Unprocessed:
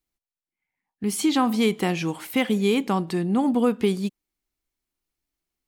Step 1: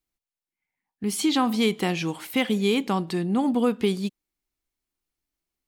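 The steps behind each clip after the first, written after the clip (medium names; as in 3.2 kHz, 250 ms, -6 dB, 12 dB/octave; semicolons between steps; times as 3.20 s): dynamic bell 3.8 kHz, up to +4 dB, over -45 dBFS, Q 1.2; trim -1.5 dB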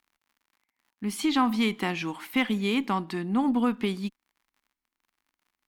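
crackle 72 per s -49 dBFS; graphic EQ 125/250/500/1000/2000/8000 Hz -7/+7/-6/+7/+5/-3 dB; Chebyshev shaper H 4 -30 dB, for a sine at -6.5 dBFS; trim -5.5 dB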